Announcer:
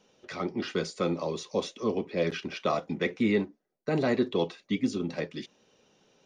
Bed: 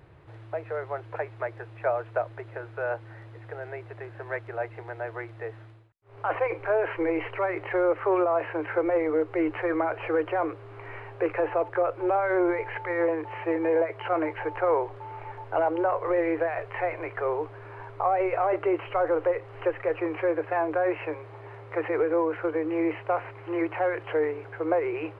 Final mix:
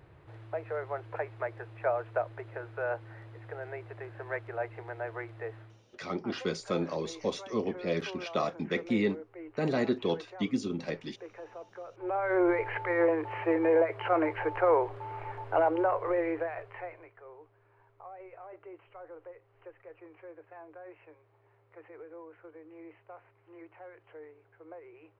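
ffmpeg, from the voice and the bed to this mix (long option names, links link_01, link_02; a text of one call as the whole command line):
ffmpeg -i stem1.wav -i stem2.wav -filter_complex "[0:a]adelay=5700,volume=-2.5dB[link_01];[1:a]volume=16dB,afade=type=out:start_time=5.59:duration=0.48:silence=0.149624,afade=type=in:start_time=11.9:duration=0.62:silence=0.112202,afade=type=out:start_time=15.54:duration=1.59:silence=0.0749894[link_02];[link_01][link_02]amix=inputs=2:normalize=0" out.wav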